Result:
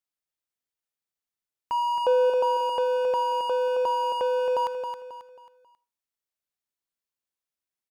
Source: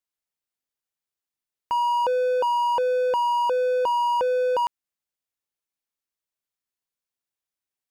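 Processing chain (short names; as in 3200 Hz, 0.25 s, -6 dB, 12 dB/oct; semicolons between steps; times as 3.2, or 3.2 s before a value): 1.73–2.3 dynamic EQ 510 Hz, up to +6 dB, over -38 dBFS, Q 1.5; feedback echo 0.27 s, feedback 36%, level -7 dB; reverb RT60 0.35 s, pre-delay 20 ms, DRR 17.5 dB; gain -3.5 dB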